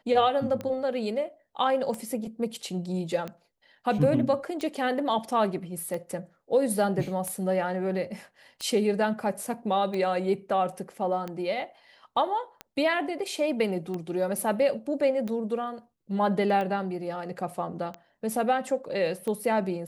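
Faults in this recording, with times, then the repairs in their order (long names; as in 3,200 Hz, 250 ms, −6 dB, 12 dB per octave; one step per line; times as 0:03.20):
scratch tick 45 rpm −21 dBFS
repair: click removal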